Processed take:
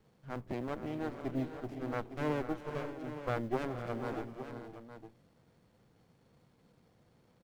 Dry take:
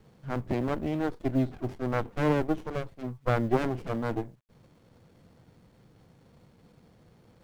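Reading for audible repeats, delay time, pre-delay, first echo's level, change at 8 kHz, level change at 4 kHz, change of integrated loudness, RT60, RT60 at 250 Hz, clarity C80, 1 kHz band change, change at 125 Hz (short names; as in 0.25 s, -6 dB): 6, 0.388 s, none, -17.0 dB, n/a, -6.5 dB, -8.5 dB, none, none, none, -7.0 dB, -10.0 dB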